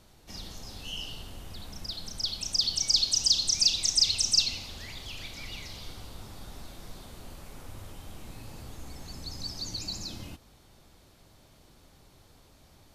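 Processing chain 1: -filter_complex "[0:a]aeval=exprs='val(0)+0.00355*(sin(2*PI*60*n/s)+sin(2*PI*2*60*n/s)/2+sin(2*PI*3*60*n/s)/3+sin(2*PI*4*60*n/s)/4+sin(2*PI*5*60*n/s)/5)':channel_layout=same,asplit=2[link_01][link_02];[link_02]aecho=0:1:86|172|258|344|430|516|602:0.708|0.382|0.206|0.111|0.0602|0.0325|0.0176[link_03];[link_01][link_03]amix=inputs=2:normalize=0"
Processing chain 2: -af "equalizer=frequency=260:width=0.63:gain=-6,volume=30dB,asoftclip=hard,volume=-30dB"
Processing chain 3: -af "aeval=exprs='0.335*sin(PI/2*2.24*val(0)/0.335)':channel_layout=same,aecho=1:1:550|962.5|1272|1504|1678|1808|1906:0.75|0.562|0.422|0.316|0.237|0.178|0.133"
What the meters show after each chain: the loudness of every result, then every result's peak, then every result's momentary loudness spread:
−24.5, −34.5, −16.0 LKFS; −9.5, −30.0, −2.0 dBFS; 24, 19, 21 LU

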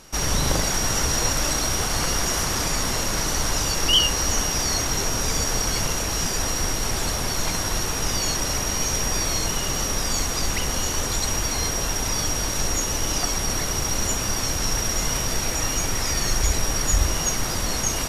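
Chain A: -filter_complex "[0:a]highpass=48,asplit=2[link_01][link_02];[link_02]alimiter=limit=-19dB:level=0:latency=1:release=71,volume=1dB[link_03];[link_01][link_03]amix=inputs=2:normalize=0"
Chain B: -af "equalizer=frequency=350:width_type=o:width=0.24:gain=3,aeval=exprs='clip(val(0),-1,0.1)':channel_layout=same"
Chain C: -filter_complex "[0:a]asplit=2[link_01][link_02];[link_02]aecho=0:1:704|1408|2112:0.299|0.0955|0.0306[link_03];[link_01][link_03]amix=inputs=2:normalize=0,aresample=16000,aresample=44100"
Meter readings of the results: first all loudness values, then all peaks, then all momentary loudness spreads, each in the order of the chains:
−18.0, −23.5, −22.5 LKFS; −5.5, −7.0, −7.0 dBFS; 2, 2, 3 LU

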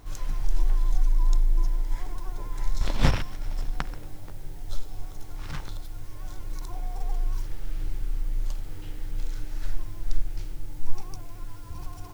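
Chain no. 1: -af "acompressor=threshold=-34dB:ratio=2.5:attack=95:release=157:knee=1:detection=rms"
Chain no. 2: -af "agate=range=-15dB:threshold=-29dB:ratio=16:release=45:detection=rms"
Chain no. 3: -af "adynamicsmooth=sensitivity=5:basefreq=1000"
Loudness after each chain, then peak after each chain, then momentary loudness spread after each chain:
−42.0, −33.5, −34.0 LKFS; −14.0, −3.5, −4.0 dBFS; 8, 20, 17 LU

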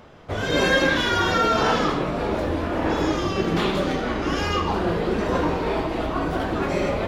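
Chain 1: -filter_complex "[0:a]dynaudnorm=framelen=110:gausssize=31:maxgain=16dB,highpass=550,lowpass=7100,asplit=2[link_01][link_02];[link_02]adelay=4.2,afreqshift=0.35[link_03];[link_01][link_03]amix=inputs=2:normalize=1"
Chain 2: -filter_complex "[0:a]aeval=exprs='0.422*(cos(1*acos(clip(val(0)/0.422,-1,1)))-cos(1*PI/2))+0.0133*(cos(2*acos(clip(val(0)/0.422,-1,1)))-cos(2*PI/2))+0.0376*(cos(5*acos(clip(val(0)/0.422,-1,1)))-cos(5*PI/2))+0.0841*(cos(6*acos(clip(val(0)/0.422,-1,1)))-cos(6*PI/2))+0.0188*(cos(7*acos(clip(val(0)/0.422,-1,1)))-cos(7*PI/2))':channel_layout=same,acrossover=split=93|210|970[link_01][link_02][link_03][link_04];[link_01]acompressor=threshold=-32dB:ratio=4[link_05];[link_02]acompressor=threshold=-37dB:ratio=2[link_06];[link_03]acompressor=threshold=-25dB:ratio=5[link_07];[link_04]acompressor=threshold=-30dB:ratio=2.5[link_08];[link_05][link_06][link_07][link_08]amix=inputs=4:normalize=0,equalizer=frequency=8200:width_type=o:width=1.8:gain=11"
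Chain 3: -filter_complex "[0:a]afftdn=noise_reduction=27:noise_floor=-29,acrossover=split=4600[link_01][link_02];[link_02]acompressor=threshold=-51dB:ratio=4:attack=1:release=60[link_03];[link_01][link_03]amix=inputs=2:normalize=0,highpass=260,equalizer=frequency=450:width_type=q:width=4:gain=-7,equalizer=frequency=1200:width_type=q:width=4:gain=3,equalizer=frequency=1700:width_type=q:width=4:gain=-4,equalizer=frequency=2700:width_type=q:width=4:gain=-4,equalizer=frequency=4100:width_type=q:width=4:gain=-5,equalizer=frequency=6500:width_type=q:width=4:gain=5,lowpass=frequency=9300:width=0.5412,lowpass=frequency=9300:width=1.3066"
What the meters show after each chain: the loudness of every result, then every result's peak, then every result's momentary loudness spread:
−23.0, −24.0, −25.5 LKFS; −8.5, −10.0, −10.0 dBFS; 10, 4, 7 LU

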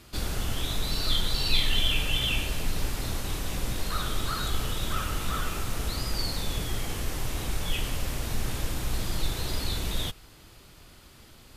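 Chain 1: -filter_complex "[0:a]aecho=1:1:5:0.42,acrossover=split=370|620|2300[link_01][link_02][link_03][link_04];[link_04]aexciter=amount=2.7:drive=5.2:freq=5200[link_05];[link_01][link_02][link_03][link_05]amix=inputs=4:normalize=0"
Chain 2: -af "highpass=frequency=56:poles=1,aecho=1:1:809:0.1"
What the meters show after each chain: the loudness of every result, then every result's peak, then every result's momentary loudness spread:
−27.0, −31.0 LKFS; −7.5, −13.5 dBFS; 9, 8 LU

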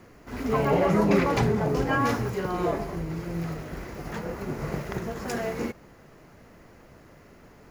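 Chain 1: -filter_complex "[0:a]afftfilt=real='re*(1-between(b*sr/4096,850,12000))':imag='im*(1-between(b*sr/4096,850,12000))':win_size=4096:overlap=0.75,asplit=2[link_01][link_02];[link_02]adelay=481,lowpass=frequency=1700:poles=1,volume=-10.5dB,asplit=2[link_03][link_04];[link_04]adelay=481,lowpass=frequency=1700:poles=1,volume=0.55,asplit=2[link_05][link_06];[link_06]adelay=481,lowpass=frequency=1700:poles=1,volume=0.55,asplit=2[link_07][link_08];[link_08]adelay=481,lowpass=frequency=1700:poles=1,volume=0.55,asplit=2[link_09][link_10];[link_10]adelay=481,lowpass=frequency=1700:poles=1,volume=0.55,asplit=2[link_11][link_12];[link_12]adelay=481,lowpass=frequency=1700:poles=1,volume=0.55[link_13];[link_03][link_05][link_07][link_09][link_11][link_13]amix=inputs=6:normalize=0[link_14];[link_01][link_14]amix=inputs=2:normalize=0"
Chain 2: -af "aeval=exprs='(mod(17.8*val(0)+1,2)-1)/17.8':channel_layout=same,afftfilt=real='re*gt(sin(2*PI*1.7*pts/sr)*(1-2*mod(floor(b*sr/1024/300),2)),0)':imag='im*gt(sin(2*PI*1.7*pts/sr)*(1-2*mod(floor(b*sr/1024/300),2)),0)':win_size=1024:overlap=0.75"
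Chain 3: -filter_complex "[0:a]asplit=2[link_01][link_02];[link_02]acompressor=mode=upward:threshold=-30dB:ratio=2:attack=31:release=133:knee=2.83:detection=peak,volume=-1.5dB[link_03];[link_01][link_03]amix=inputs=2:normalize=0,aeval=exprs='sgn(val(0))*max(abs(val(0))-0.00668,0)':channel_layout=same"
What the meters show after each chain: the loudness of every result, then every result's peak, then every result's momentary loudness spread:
−28.0, −33.5, −22.5 LKFS; −11.0, −19.5, −5.0 dBFS; 19, 8, 14 LU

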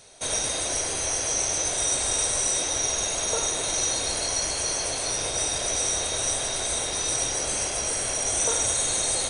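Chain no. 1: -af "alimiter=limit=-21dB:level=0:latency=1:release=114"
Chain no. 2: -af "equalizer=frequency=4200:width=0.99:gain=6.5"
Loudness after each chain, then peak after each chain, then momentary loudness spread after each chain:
−28.5, −20.5 LKFS; −21.0, −8.5 dBFS; 1, 3 LU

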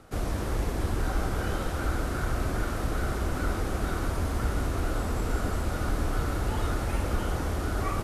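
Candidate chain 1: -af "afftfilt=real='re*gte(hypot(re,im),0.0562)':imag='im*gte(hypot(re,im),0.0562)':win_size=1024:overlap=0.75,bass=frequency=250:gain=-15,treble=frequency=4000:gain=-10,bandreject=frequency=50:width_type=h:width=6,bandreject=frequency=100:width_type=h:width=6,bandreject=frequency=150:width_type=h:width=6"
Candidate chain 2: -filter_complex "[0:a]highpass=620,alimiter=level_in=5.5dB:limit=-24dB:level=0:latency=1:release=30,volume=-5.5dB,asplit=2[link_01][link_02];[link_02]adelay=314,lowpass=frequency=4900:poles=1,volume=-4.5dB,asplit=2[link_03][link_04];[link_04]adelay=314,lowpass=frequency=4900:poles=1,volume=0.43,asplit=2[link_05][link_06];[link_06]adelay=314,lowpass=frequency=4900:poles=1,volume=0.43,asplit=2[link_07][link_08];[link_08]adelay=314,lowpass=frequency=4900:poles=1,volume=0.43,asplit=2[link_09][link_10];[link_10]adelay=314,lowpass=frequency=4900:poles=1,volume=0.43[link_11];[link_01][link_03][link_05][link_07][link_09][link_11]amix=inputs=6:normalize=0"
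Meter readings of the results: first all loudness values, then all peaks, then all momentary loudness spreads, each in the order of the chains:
−39.0, −37.0 LKFS; −23.0, −25.5 dBFS; 2, 1 LU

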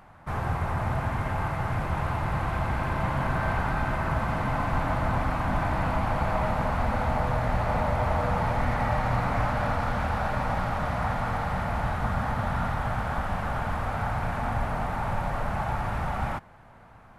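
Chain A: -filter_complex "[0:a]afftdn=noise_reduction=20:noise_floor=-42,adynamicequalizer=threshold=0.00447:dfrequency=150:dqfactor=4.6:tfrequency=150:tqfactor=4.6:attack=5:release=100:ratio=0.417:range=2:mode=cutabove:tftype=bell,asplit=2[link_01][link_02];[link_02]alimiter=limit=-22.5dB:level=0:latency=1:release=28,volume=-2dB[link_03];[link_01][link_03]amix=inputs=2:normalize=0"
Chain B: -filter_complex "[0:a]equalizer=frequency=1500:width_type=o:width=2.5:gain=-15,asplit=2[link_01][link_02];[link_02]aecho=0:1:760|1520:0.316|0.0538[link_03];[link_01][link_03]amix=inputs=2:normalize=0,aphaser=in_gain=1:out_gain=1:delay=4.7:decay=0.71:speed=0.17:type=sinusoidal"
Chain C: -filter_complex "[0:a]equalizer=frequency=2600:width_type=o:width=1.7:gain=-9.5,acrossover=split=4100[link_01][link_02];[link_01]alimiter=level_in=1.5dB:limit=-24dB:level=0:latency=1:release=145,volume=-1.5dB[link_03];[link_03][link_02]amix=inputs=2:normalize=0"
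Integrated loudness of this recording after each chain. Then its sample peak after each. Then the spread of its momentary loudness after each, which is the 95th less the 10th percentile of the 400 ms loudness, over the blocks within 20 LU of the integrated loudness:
−25.0, −27.0, −35.5 LKFS; −11.5, −7.5, −25.0 dBFS; 3, 12, 1 LU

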